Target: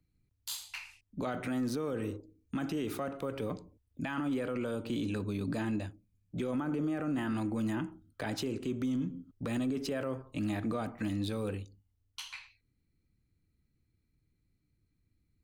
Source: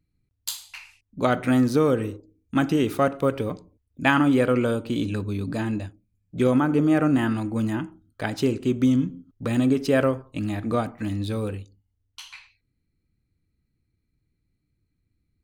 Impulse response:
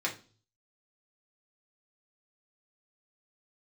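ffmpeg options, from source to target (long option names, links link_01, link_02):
-filter_complex "[0:a]acrossover=split=140|900|1900[link_01][link_02][link_03][link_04];[link_01]asoftclip=type=tanh:threshold=-38dB[link_05];[link_05][link_02][link_03][link_04]amix=inputs=4:normalize=0,acompressor=threshold=-28dB:ratio=2,alimiter=level_in=0.5dB:limit=-24dB:level=0:latency=1:release=12,volume=-0.5dB,volume=-2dB"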